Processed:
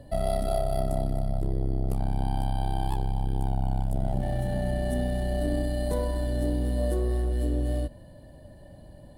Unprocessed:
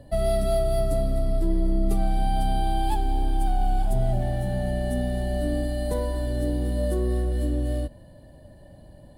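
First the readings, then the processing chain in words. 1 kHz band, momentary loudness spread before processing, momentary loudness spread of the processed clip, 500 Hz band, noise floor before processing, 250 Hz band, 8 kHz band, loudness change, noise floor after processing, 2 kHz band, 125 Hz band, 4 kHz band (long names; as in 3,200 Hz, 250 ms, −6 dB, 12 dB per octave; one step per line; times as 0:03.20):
−5.0 dB, 3 LU, 2 LU, −3.5 dB, −48 dBFS, −2.5 dB, −3.5 dB, −2.5 dB, −48 dBFS, −2.5 dB, −1.0 dB, −4.0 dB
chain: saturating transformer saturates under 140 Hz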